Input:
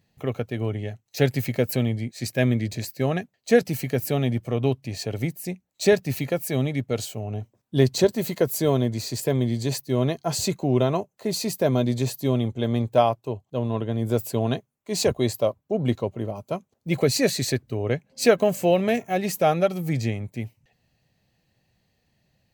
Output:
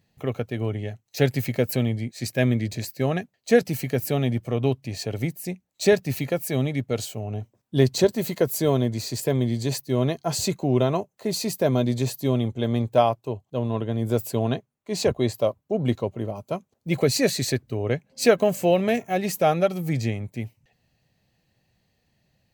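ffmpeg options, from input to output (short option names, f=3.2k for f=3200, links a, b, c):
-filter_complex "[0:a]asettb=1/sr,asplit=3[a][b][c];[a]atrim=end=14.474[d];[b]atrim=start=14.47:end=15.38,asetpts=PTS-STARTPTS,afade=t=in:d=0.004:c=qsin,afade=t=out:st=0.906:d=0.004:c=qsin,highshelf=f=5.7k:g=-7.5[e];[c]atrim=start=15.376[f];[d][e]acrossfade=d=0.004:c1=hsin:c2=qsin[g];[g][f]acrossfade=d=0.004:c1=qsin:c2=hsin"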